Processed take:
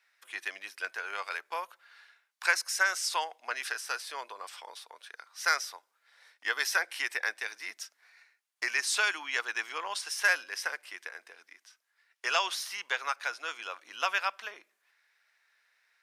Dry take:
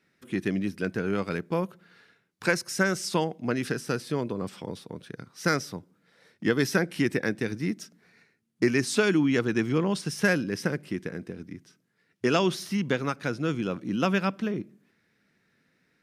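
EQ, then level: HPF 810 Hz 24 dB/oct; notch 1300 Hz, Q 24; +1.5 dB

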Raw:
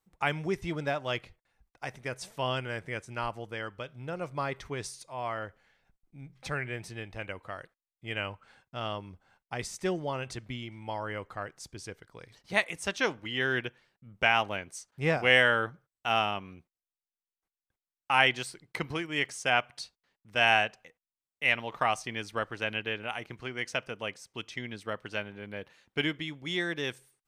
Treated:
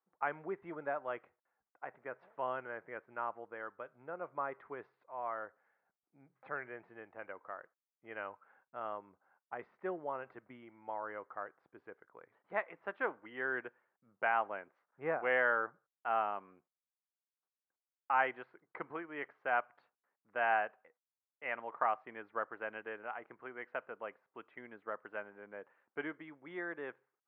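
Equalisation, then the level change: HPF 380 Hz 12 dB/oct; ladder low-pass 1800 Hz, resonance 30%; air absorption 270 m; +1.5 dB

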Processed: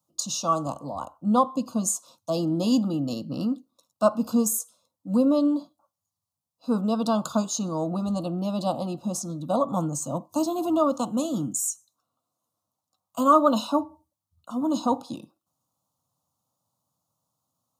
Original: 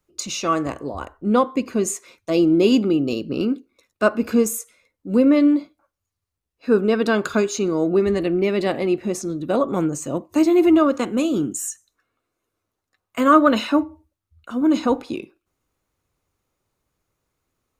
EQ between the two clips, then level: HPF 120 Hz 24 dB/oct; Butterworth band-stop 1800 Hz, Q 1.1; fixed phaser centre 950 Hz, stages 4; +1.5 dB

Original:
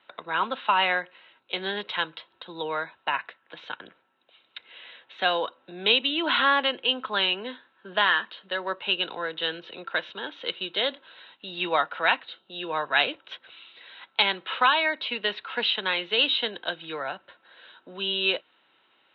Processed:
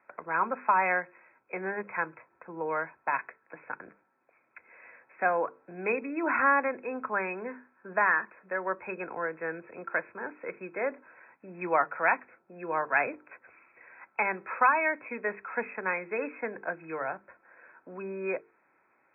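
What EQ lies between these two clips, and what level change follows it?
brick-wall FIR low-pass 2600 Hz; air absorption 290 m; notches 50/100/150/200/250/300/350/400/450 Hz; 0.0 dB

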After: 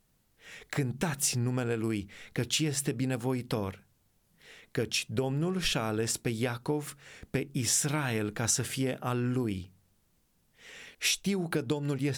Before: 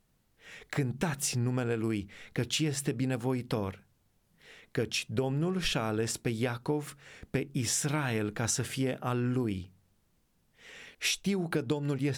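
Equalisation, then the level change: high shelf 5000 Hz +5 dB; 0.0 dB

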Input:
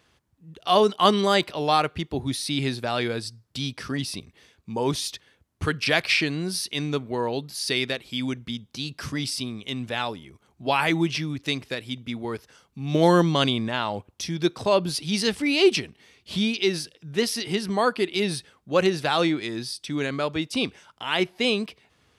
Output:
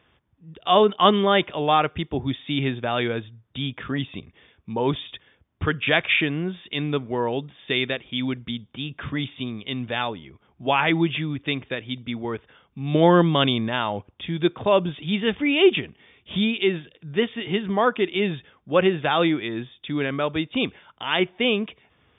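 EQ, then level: brick-wall FIR low-pass 3700 Hz; +2.0 dB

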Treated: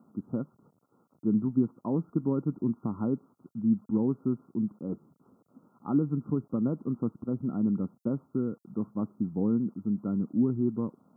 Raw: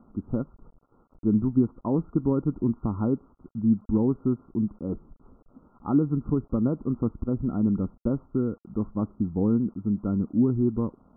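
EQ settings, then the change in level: HPF 130 Hz 24 dB/oct; tone controls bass +3 dB, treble +14 dB; -5.0 dB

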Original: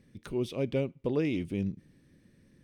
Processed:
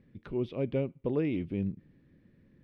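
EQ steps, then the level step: air absorption 350 m; 0.0 dB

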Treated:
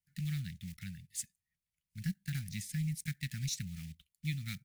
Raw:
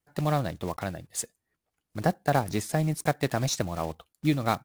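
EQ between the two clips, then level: elliptic band-stop 190–2000 Hz, stop band 40 dB; -7.0 dB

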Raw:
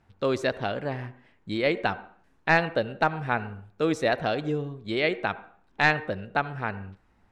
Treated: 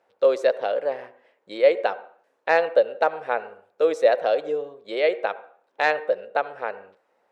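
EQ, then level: resonant high-pass 520 Hz, resonance Q 4.9; -2.5 dB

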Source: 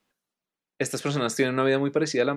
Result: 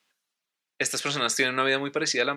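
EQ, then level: tilt shelf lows -8.5 dB, about 1100 Hz; low shelf 71 Hz -10.5 dB; high shelf 8200 Hz -9.5 dB; +1.5 dB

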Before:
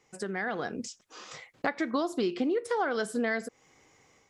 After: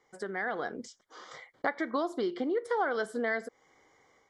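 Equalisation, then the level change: Butterworth band-stop 2600 Hz, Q 3.7; tone controls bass -12 dB, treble -10 dB; low shelf 77 Hz +8 dB; 0.0 dB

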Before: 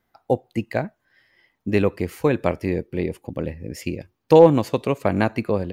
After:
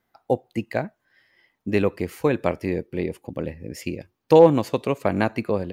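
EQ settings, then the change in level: low shelf 91 Hz -6.5 dB; -1.0 dB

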